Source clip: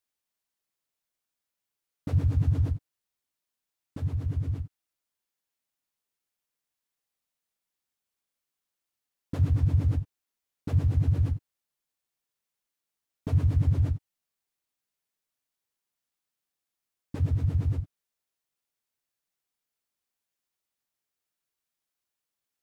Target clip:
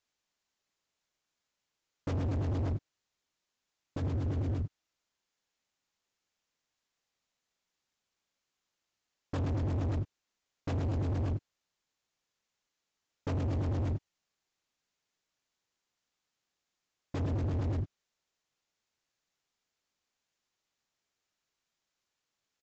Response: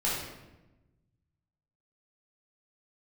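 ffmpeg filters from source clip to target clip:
-af "alimiter=limit=-19.5dB:level=0:latency=1:release=42,aresample=16000,asoftclip=type=hard:threshold=-35dB,aresample=44100,volume=5dB"

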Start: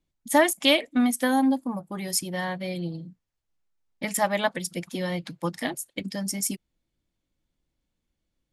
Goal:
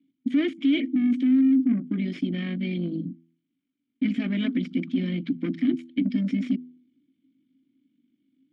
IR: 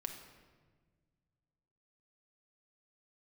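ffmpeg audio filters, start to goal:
-filter_complex "[0:a]equalizer=f=125:t=o:w=1:g=10,equalizer=f=250:t=o:w=1:g=11,equalizer=f=500:t=o:w=1:g=-12,equalizer=f=2k:t=o:w=1:g=-12,tremolo=f=49:d=0.519,asplit=2[a][b];[b]highpass=f=720:p=1,volume=33dB,asoftclip=type=tanh:threshold=-4.5dB[c];[a][c]amix=inputs=2:normalize=0,lowpass=f=1.5k:p=1,volume=-6dB,asplit=3[d][e][f];[d]bandpass=f=270:t=q:w=8,volume=0dB[g];[e]bandpass=f=2.29k:t=q:w=8,volume=-6dB[h];[f]bandpass=f=3.01k:t=q:w=8,volume=-9dB[i];[g][h][i]amix=inputs=3:normalize=0,alimiter=limit=-18dB:level=0:latency=1:release=18,lowpass=6.7k,bass=f=250:g=-3,treble=f=4k:g=-10,bandreject=f=82.95:t=h:w=4,bandreject=f=165.9:t=h:w=4,bandreject=f=248.85:t=h:w=4,bandreject=f=331.8:t=h:w=4,bandreject=f=414.75:t=h:w=4,volume=4.5dB"

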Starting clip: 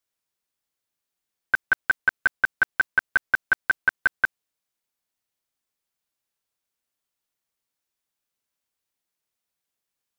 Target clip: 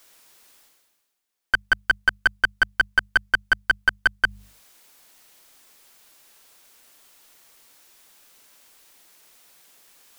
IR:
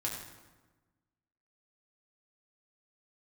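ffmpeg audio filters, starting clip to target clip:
-af "equalizer=f=100:t=o:w=1.9:g=-8.5,aeval=exprs='clip(val(0),-1,0.141)':c=same,bandreject=f=50:t=h:w=6,bandreject=f=100:t=h:w=6,bandreject=f=150:t=h:w=6,bandreject=f=200:t=h:w=6,areverse,acompressor=mode=upward:threshold=-37dB:ratio=2.5,areverse,volume=3.5dB"

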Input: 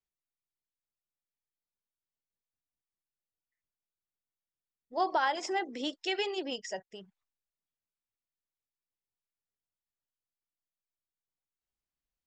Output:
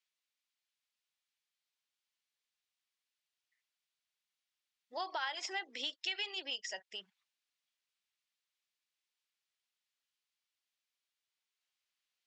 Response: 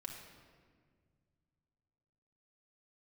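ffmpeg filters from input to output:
-af "bandpass=f=3.2k:t=q:w=1:csg=0,acompressor=threshold=-53dB:ratio=2.5,volume=11.5dB"

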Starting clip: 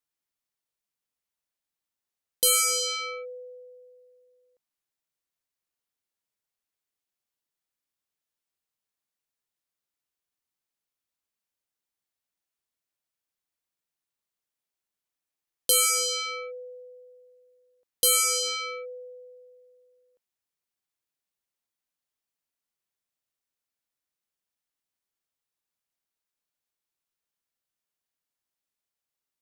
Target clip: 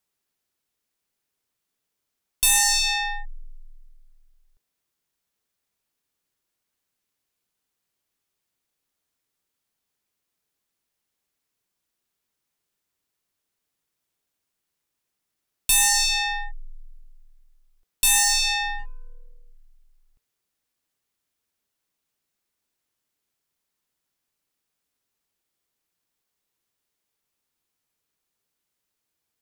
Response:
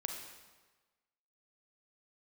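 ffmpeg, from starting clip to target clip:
-filter_complex "[0:a]asplit=3[a][b][c];[a]afade=t=out:st=18.78:d=0.02[d];[b]aeval=exprs='0.0211*(cos(1*acos(clip(val(0)/0.0211,-1,1)))-cos(1*PI/2))+0.00106*(cos(3*acos(clip(val(0)/0.0211,-1,1)))-cos(3*PI/2))+0.000133*(cos(8*acos(clip(val(0)/0.0211,-1,1)))-cos(8*PI/2))':c=same,afade=t=in:st=18.78:d=0.02,afade=t=out:st=19.46:d=0.02[e];[c]afade=t=in:st=19.46:d=0.02[f];[d][e][f]amix=inputs=3:normalize=0,afreqshift=-480,asoftclip=type=tanh:threshold=-22dB,volume=7.5dB"

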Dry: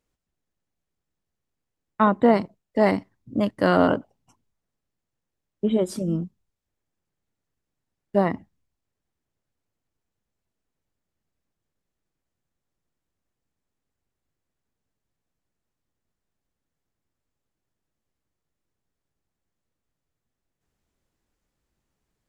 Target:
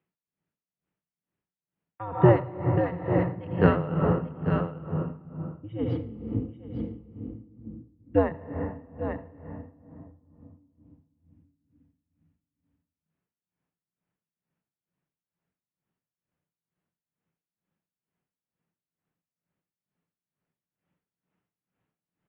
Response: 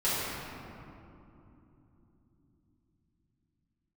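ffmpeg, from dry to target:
-filter_complex "[0:a]highpass=f=220:t=q:w=0.5412,highpass=f=220:t=q:w=1.307,lowpass=f=3.1k:t=q:w=0.5176,lowpass=f=3.1k:t=q:w=0.7071,lowpass=f=3.1k:t=q:w=1.932,afreqshift=-110,equalizer=f=170:w=4.8:g=11.5,aecho=1:1:842:0.355,asplit=2[a][b];[1:a]atrim=start_sample=2205,adelay=74[c];[b][c]afir=irnorm=-1:irlink=0,volume=-15.5dB[d];[a][d]amix=inputs=2:normalize=0,aeval=exprs='val(0)*pow(10,-18*(0.5-0.5*cos(2*PI*2.2*n/s))/20)':c=same"

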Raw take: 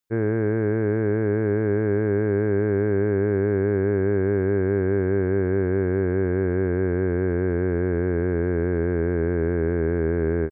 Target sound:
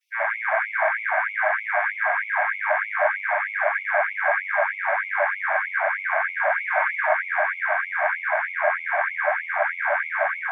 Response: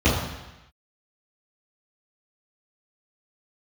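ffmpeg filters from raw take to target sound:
-filter_complex "[0:a]asettb=1/sr,asplit=3[a][b][c];[a]atrim=end=6.564[d];[b]atrim=start=6.56:end=7.04,asetpts=PTS-STARTPTS,afade=t=in:d=0.004:c=qsin,afade=t=out:st=0.476:d=0.004:c=qsin,aecho=1:1:6.5:0.9,atrim=end_sample=21168[e];[c]atrim=start=7.036[f];[d][e]acrossfade=d=0.004:c1=hsin:c2=qsin[g];[g][f]acrossfade=d=0.004:c1=qsin:c2=hsin[h];[1:a]atrim=start_sample=2205,asetrate=39690,aresample=44100[i];[h][i]afir=irnorm=-1:irlink=0,afftfilt=real='re*gte(b*sr/1024,560*pow(2100/560,0.5+0.5*sin(2*PI*3.2*pts/sr)))':imag='im*gte(b*sr/1024,560*pow(2100/560,0.5+0.5*sin(2*PI*3.2*pts/sr)))':win_size=1024:overlap=0.75"

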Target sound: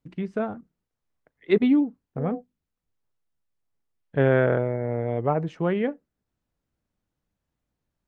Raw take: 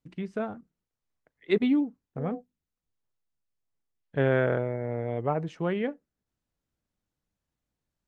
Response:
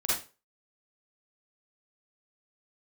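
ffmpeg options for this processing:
-af "highshelf=f=3.1k:g=-7.5,volume=4.5dB"

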